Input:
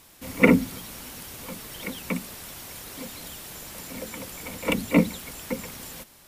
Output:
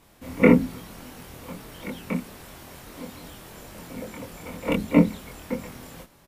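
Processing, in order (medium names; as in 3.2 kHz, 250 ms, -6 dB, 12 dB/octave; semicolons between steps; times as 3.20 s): treble shelf 2.3 kHz -11.5 dB; doubling 24 ms -2 dB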